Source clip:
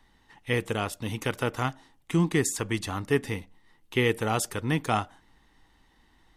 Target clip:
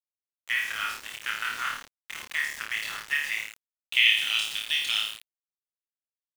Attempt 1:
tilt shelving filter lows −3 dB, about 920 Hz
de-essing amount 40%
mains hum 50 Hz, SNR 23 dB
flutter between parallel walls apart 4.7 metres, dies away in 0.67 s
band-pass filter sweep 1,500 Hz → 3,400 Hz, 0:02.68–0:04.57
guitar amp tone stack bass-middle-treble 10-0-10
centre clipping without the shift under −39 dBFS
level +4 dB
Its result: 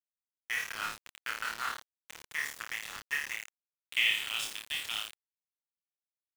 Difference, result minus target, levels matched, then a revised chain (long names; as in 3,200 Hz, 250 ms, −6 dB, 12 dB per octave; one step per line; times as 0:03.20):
1,000 Hz band +3.5 dB
tilt shelving filter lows −14.5 dB, about 920 Hz
de-essing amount 40%
mains hum 50 Hz, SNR 23 dB
flutter between parallel walls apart 4.7 metres, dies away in 0.67 s
band-pass filter sweep 1,500 Hz → 3,400 Hz, 0:02.68–0:04.57
guitar amp tone stack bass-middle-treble 10-0-10
centre clipping without the shift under −39 dBFS
level +4 dB